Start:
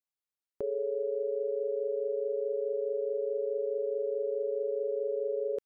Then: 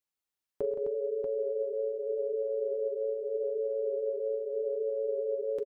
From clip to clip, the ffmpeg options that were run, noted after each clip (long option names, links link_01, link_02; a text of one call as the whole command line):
ffmpeg -i in.wav -filter_complex "[0:a]flanger=delay=2.1:depth=4.7:regen=-53:speed=0.81:shape=sinusoidal,asplit=2[link_01][link_02];[link_02]aecho=0:1:42|108|131|169|259|637:0.178|0.1|0.224|0.299|0.422|0.531[link_03];[link_01][link_03]amix=inputs=2:normalize=0,volume=6dB" out.wav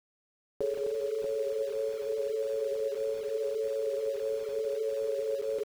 ffmpeg -i in.wav -af "aeval=exprs='val(0)*gte(abs(val(0)),0.0075)':channel_layout=same" out.wav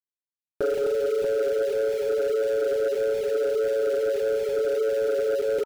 ffmpeg -i in.wav -af "asuperstop=centerf=1100:order=20:qfactor=3.2,aeval=exprs='0.0841*sin(PI/2*1.58*val(0)/0.0841)':channel_layout=same,volume=2dB" out.wav